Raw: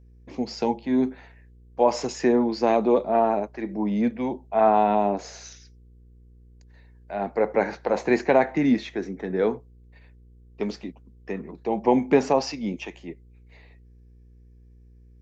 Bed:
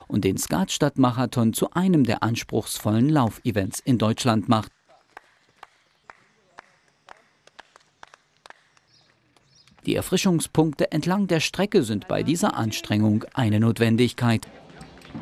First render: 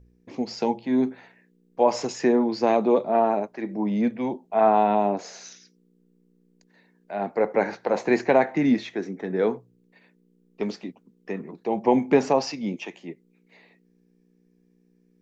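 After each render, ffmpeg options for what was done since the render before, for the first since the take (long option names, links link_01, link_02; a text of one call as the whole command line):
ffmpeg -i in.wav -af "bandreject=frequency=60:width_type=h:width=4,bandreject=frequency=120:width_type=h:width=4" out.wav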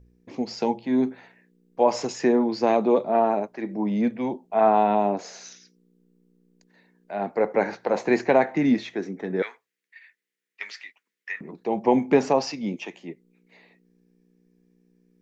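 ffmpeg -i in.wav -filter_complex "[0:a]asettb=1/sr,asplit=3[link_01][link_02][link_03];[link_01]atrim=end=9.424[link_04];[link_02]atrim=start=9.42:end=11.41,asetpts=PTS-STARTPTS,afade=type=in:duration=0.004:curve=qsin,afade=type=out:start_time=1.986:duration=0.004:curve=qsin,highpass=frequency=1900:width_type=q:width=4.1[link_05];[link_03]atrim=start=11.406[link_06];[link_04][link_05]acrossfade=duration=0.004:curve1=hsin:curve2=qsin[link_07];[link_07][link_06]acrossfade=duration=0.004:curve1=qsin:curve2=hsin" out.wav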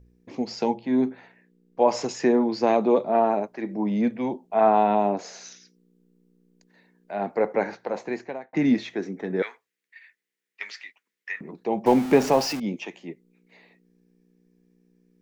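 ffmpeg -i in.wav -filter_complex "[0:a]asettb=1/sr,asplit=3[link_01][link_02][link_03];[link_01]atrim=end=0.744[link_04];[link_02]atrim=start=0.74:end=1.82,asetpts=PTS-STARTPTS,afade=type=in:duration=0.004:curve=qsin,afade=type=out:start_time=1.076:duration=0.004:curve=qsin,highshelf=frequency=4600:gain=-5.5[link_05];[link_03]atrim=start=1.816[link_06];[link_04][link_05]acrossfade=duration=0.004:curve1=hsin:curve2=qsin[link_07];[link_07][link_06]acrossfade=duration=0.004:curve1=qsin:curve2=hsin,asettb=1/sr,asplit=3[link_08][link_09][link_10];[link_08]atrim=end=11.864[link_11];[link_09]atrim=start=11.86:end=12.6,asetpts=PTS-STARTPTS,afade=type=in:duration=0.004:curve=qsin,afade=type=out:start_time=0.736:duration=0.004:curve=qsin,aeval=exprs='val(0)+0.5*0.0355*sgn(val(0))':channel_layout=same[link_12];[link_10]atrim=start=12.596[link_13];[link_11][link_12]acrossfade=duration=0.004:curve1=hsin:curve2=qsin[link_14];[link_14][link_13]acrossfade=duration=0.004:curve1=qsin:curve2=hsin,asplit=2[link_15][link_16];[link_15]atrim=end=8.53,asetpts=PTS-STARTPTS,afade=type=out:start_time=7.36:duration=1.17[link_17];[link_16]atrim=start=8.53,asetpts=PTS-STARTPTS,afade=type=in:duration=0.004:curve=hsin[link_18];[link_17][link_18]concat=n=2:v=0:a=1" out.wav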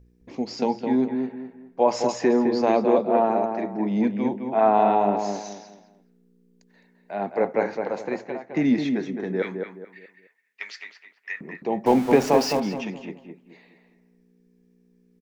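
ffmpeg -i in.wav -filter_complex "[0:a]asplit=2[link_01][link_02];[link_02]adelay=212,lowpass=frequency=1800:poles=1,volume=-5dB,asplit=2[link_03][link_04];[link_04]adelay=212,lowpass=frequency=1800:poles=1,volume=0.33,asplit=2[link_05][link_06];[link_06]adelay=212,lowpass=frequency=1800:poles=1,volume=0.33,asplit=2[link_07][link_08];[link_08]adelay=212,lowpass=frequency=1800:poles=1,volume=0.33[link_09];[link_01][link_03][link_05][link_07][link_09]amix=inputs=5:normalize=0" out.wav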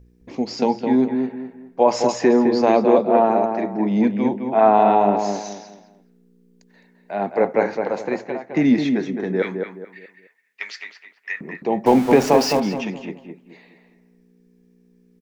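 ffmpeg -i in.wav -af "volume=4.5dB,alimiter=limit=-3dB:level=0:latency=1" out.wav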